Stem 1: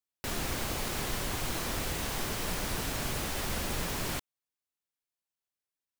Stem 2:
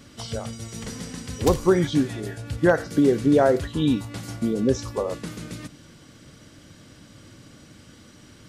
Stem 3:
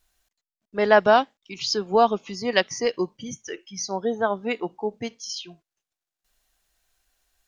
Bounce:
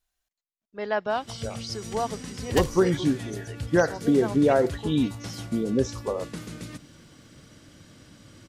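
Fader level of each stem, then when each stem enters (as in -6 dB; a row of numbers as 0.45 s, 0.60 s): mute, -2.5 dB, -10.5 dB; mute, 1.10 s, 0.00 s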